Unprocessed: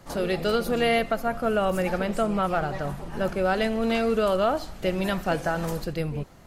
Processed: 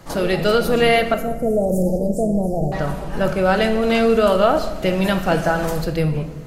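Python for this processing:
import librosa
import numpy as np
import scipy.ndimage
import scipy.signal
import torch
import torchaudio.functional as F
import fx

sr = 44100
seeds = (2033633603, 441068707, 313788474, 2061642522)

y = fx.cheby2_bandstop(x, sr, low_hz=1200.0, high_hz=3400.0, order=4, stop_db=50, at=(1.14, 2.72))
y = fx.room_shoebox(y, sr, seeds[0], volume_m3=580.0, walls='mixed', distance_m=0.59)
y = y * 10.0 ** (6.5 / 20.0)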